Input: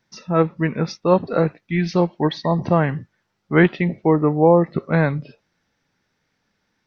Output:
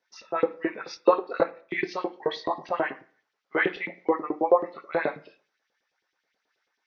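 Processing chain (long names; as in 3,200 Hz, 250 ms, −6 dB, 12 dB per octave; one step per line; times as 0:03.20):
multi-voice chorus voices 2, 0.38 Hz, delay 23 ms, depth 4.9 ms
auto-filter high-pass saw up 9.3 Hz 330–3,700 Hz
0:00.92–0:01.94: transient designer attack +7 dB, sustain −5 dB
on a send at −10.5 dB: convolution reverb RT60 0.45 s, pre-delay 3 ms
on the sum: downsampling to 16,000 Hz
level −5 dB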